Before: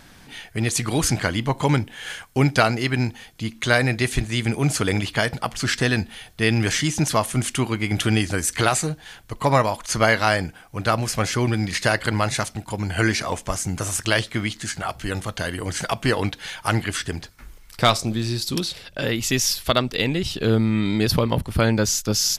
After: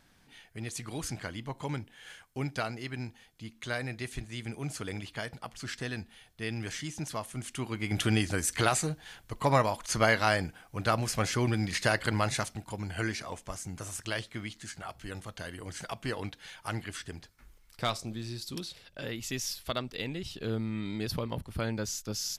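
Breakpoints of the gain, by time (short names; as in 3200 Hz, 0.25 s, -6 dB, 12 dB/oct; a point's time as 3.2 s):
7.43 s -16 dB
8 s -7 dB
12.3 s -7 dB
13.25 s -14 dB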